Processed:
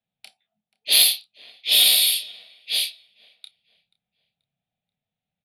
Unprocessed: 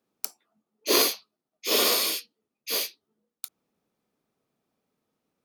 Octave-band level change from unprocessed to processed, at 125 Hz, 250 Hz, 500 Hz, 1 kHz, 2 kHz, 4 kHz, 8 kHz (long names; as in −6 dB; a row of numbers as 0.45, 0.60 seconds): can't be measured, below −15 dB, −14.5 dB, below −10 dB, +3.5 dB, +9.5 dB, +6.0 dB